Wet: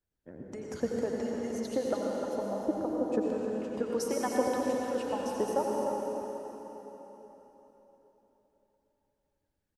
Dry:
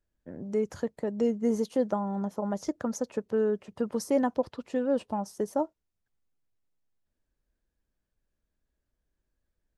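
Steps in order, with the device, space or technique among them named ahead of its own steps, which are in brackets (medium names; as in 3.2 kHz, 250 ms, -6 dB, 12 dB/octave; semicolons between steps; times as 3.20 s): harmonic-percussive split harmonic -16 dB; 2.38–3.12 s: low-pass 1 kHz 24 dB/octave; cave (delay 303 ms -9.5 dB; reverberation RT60 4.0 s, pre-delay 79 ms, DRR -2.5 dB)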